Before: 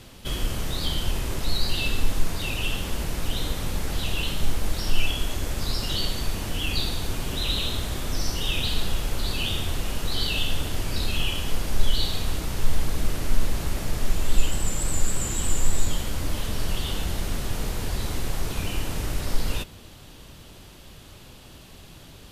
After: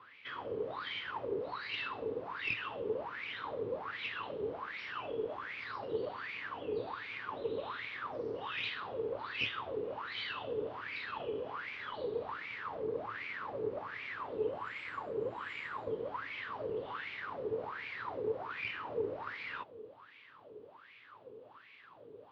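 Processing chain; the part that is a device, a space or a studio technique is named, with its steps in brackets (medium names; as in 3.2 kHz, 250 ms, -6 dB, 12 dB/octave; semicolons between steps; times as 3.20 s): wah-wah guitar rig (wah-wah 1.3 Hz 430–2300 Hz, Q 11; valve stage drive 30 dB, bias 0.75; cabinet simulation 79–4200 Hz, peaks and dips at 110 Hz +10 dB, 280 Hz +5 dB, 440 Hz +6 dB, 700 Hz -5 dB, 1.1 kHz +4 dB); trim +13 dB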